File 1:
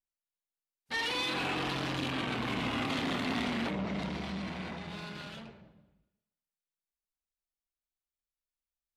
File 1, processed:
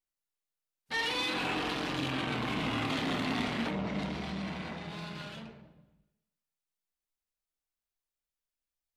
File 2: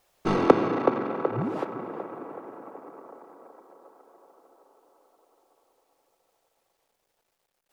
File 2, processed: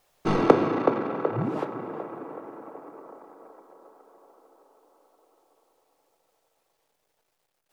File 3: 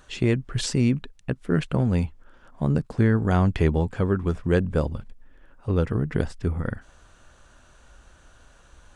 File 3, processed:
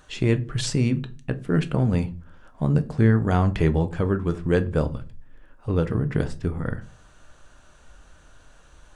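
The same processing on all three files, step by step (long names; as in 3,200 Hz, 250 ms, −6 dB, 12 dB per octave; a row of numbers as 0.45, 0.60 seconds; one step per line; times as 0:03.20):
rectangular room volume 210 cubic metres, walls furnished, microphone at 0.49 metres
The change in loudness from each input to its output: +0.5, +0.5, +0.5 LU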